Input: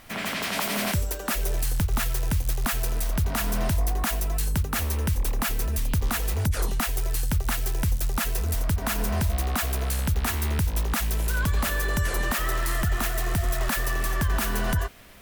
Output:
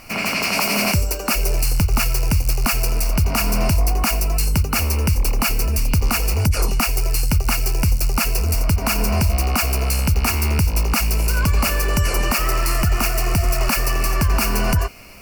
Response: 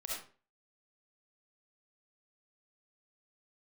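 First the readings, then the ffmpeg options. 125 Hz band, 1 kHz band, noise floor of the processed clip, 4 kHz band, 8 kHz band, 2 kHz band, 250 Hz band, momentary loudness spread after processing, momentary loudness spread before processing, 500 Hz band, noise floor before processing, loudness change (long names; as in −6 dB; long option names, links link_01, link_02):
+7.0 dB, +7.0 dB, −24 dBFS, +8.5 dB, +7.5 dB, +6.0 dB, +7.0 dB, 2 LU, 2 LU, +7.0 dB, −31 dBFS, +7.0 dB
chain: -af "superequalizer=11b=0.501:12b=1.78:13b=0.251:14b=1.78,volume=7dB"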